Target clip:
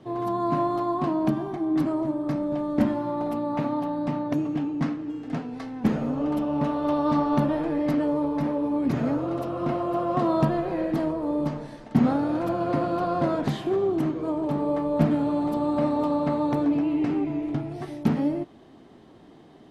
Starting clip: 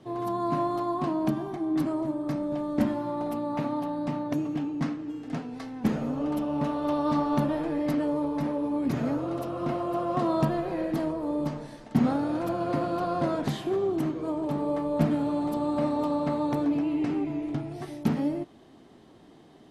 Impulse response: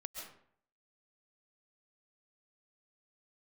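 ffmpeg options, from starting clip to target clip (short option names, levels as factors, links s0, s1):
-af "highshelf=f=4900:g=-7.5,volume=1.41"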